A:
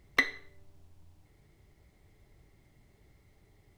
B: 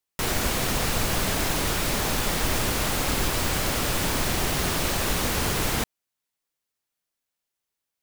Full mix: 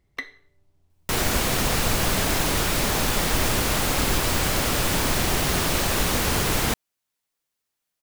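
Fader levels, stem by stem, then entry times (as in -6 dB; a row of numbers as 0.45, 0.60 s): -7.0, +2.5 dB; 0.00, 0.90 s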